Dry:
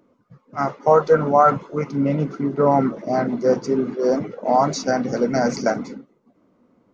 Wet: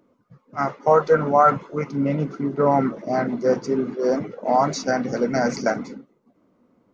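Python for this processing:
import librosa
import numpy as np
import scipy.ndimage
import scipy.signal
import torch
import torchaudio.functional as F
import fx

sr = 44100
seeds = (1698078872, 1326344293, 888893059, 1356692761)

y = fx.dynamic_eq(x, sr, hz=1900.0, q=1.3, threshold_db=-35.0, ratio=4.0, max_db=4)
y = y * 10.0 ** (-2.0 / 20.0)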